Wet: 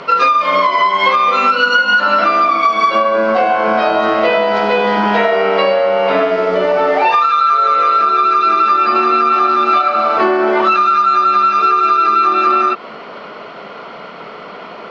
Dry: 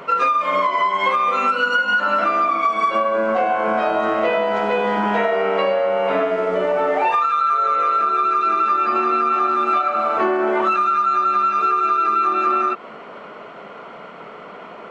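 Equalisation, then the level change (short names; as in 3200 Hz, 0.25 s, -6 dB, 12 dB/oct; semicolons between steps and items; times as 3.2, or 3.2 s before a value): synth low-pass 4800 Hz, resonance Q 3.2; +5.5 dB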